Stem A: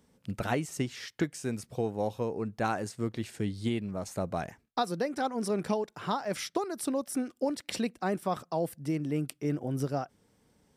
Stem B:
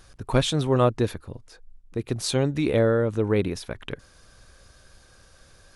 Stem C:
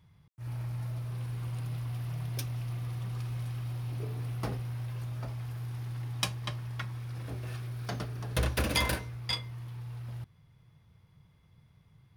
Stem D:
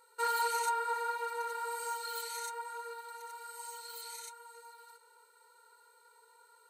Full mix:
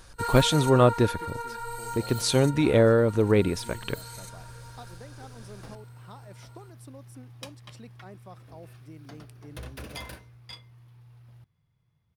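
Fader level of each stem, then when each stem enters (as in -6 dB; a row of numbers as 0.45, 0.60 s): -17.0, +1.5, -11.5, +1.0 dB; 0.00, 0.00, 1.20, 0.00 s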